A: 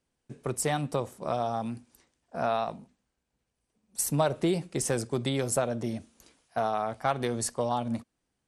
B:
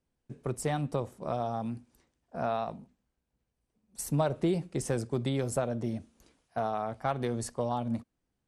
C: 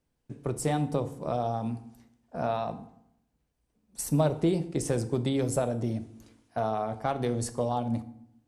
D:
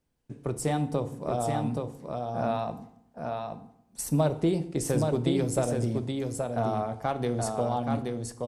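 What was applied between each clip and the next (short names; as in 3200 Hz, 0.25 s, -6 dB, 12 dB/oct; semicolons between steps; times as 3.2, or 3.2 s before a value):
tilt -1.5 dB/oct; gain -4 dB
dynamic EQ 1500 Hz, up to -4 dB, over -48 dBFS, Q 0.94; FDN reverb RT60 0.75 s, low-frequency decay 1.25×, high-frequency decay 0.7×, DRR 10 dB; gain +3 dB
echo 0.825 s -4 dB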